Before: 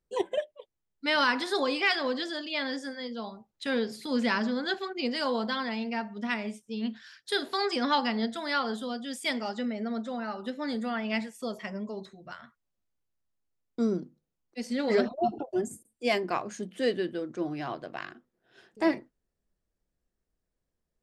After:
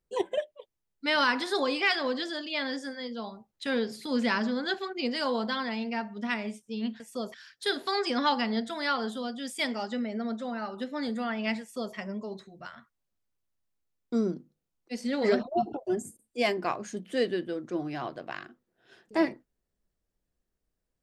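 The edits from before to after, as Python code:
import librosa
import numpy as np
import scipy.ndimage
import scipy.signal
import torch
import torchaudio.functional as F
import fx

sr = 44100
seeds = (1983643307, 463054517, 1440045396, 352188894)

y = fx.edit(x, sr, fx.duplicate(start_s=11.27, length_s=0.34, to_s=7.0), tone=tone)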